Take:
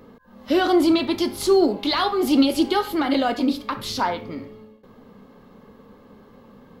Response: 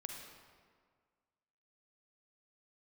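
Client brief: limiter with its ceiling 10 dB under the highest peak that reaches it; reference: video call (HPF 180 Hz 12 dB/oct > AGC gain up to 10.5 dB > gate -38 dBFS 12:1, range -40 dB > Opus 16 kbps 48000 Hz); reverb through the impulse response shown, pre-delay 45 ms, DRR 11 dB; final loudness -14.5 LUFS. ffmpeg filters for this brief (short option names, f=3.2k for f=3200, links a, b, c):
-filter_complex "[0:a]alimiter=limit=-17dB:level=0:latency=1,asplit=2[a][b];[1:a]atrim=start_sample=2205,adelay=45[c];[b][c]afir=irnorm=-1:irlink=0,volume=-9dB[d];[a][d]amix=inputs=2:normalize=0,highpass=180,dynaudnorm=m=10.5dB,agate=range=-40dB:threshold=-38dB:ratio=12,volume=11dB" -ar 48000 -c:a libopus -b:a 16k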